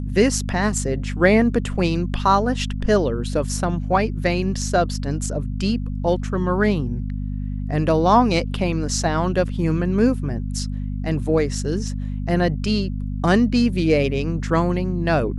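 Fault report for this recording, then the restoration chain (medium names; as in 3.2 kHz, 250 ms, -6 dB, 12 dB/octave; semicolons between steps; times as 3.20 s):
hum 50 Hz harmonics 5 -26 dBFS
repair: de-hum 50 Hz, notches 5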